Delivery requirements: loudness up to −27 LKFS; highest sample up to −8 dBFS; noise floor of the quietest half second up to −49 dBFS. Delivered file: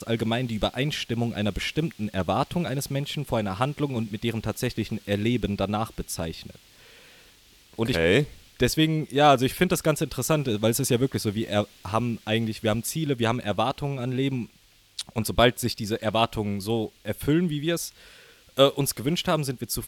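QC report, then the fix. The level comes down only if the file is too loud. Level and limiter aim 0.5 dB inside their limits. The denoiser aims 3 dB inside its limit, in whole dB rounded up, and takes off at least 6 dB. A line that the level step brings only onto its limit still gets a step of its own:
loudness −26.0 LKFS: out of spec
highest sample −6.0 dBFS: out of spec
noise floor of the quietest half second −58 dBFS: in spec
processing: level −1.5 dB
brickwall limiter −8.5 dBFS

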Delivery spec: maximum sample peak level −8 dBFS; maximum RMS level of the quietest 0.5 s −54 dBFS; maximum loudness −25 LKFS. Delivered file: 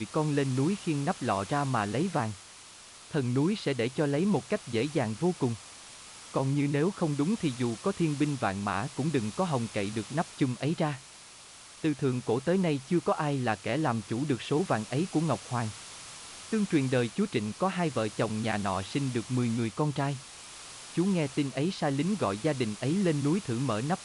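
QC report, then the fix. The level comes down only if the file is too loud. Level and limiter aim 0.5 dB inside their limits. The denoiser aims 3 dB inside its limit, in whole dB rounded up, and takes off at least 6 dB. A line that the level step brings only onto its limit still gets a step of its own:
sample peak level −14.5 dBFS: in spec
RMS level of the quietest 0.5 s −50 dBFS: out of spec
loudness −30.0 LKFS: in spec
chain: broadband denoise 7 dB, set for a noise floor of −50 dBFS

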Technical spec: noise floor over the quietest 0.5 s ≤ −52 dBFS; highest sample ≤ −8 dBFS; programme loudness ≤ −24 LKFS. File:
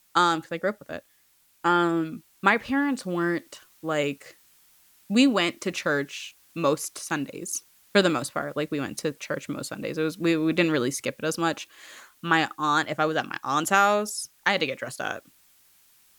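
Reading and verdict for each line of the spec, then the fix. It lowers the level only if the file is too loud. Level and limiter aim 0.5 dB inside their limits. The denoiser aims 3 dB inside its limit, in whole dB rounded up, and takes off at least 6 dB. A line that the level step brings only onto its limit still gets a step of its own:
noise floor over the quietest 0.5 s −63 dBFS: in spec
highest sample −6.5 dBFS: out of spec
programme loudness −26.0 LKFS: in spec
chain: brickwall limiter −8.5 dBFS

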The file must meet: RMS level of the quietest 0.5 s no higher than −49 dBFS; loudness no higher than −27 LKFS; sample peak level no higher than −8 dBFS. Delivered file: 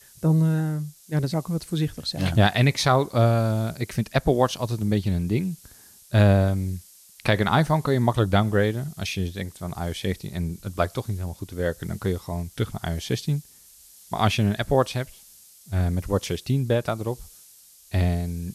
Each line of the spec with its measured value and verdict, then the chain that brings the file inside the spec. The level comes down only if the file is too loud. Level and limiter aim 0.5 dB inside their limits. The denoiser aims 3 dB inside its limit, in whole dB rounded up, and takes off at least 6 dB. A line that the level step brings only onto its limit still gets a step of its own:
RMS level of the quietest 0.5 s −52 dBFS: in spec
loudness −24.5 LKFS: out of spec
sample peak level −7.0 dBFS: out of spec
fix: level −3 dB

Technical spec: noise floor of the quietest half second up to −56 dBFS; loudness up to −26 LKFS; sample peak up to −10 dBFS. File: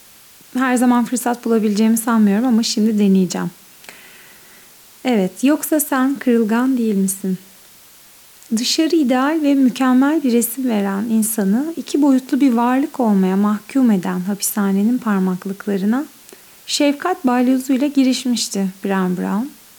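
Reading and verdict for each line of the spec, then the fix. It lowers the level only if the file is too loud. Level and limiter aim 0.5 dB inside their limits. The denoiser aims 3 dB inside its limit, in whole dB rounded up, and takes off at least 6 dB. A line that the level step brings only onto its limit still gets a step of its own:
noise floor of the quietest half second −45 dBFS: out of spec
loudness −17.0 LKFS: out of spec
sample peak −5.5 dBFS: out of spec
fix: broadband denoise 6 dB, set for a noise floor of −45 dBFS
level −9.5 dB

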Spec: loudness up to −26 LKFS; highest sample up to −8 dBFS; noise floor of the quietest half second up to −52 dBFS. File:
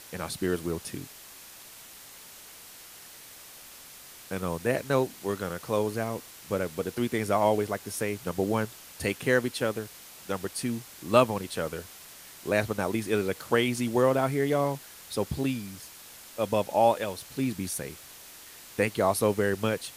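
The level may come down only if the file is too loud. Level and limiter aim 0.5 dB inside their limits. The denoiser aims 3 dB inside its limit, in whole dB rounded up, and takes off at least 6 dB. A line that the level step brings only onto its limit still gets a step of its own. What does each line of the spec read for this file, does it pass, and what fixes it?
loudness −28.5 LKFS: in spec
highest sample −5.0 dBFS: out of spec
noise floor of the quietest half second −48 dBFS: out of spec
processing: broadband denoise 7 dB, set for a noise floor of −48 dBFS
brickwall limiter −8.5 dBFS

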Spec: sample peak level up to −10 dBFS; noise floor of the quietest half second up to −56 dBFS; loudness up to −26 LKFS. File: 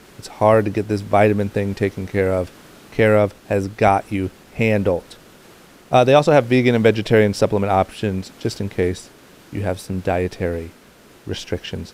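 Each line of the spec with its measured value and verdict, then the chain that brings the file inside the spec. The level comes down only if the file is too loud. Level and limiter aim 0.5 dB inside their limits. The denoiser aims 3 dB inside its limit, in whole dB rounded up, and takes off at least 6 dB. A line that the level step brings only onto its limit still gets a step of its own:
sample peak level −2.0 dBFS: out of spec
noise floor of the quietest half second −48 dBFS: out of spec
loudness −19.0 LKFS: out of spec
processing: broadband denoise 6 dB, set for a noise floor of −48 dBFS
level −7.5 dB
brickwall limiter −10.5 dBFS

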